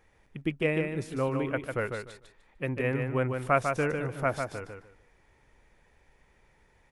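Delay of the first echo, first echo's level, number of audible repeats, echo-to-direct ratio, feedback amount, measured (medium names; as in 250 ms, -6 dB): 149 ms, -5.5 dB, 3, -5.5 dB, 21%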